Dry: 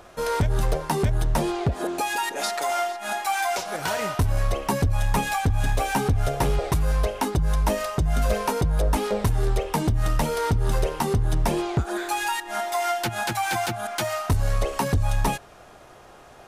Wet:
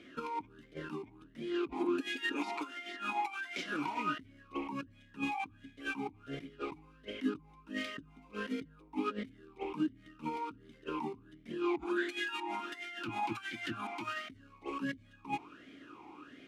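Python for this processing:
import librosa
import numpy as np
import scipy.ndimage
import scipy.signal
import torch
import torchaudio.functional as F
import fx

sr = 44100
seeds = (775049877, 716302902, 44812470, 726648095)

y = fx.over_compress(x, sr, threshold_db=-28.0, ratio=-0.5)
y = fx.vowel_sweep(y, sr, vowels='i-u', hz=1.4)
y = y * librosa.db_to_amplitude(4.5)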